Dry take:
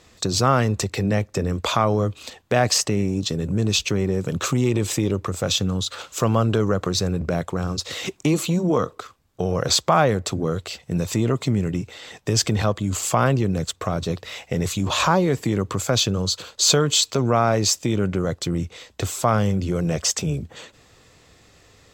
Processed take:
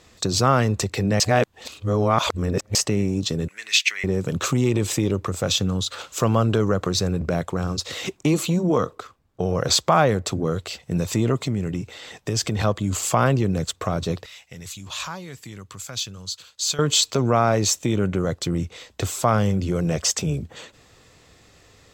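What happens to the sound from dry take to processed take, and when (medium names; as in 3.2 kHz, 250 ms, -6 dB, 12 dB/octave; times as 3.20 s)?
1.20–2.75 s: reverse
3.48–4.04 s: resonant high-pass 2 kHz, resonance Q 5.2
7.91–10.45 s: tape noise reduction on one side only decoder only
11.38–12.60 s: compression 1.5:1, threshold -25 dBFS
14.26–16.79 s: amplifier tone stack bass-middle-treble 5-5-5
17.64–18.18 s: band-stop 4.9 kHz, Q 6.6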